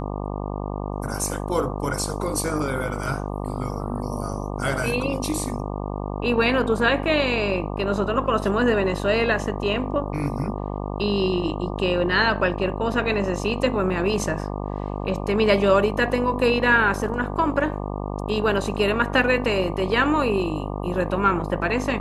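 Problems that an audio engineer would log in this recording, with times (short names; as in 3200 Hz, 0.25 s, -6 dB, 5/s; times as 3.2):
buzz 50 Hz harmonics 24 -29 dBFS
7.03 gap 2 ms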